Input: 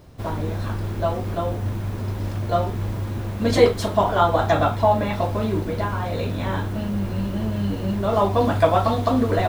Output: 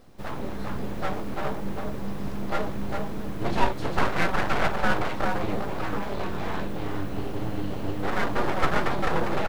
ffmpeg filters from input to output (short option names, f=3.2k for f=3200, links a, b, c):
-filter_complex "[0:a]acrossover=split=2900[a][b];[b]acompressor=threshold=-46dB:ratio=4:attack=1:release=60[c];[a][c]amix=inputs=2:normalize=0,aecho=1:1:401:0.562,aeval=exprs='abs(val(0))':c=same,volume=-4dB"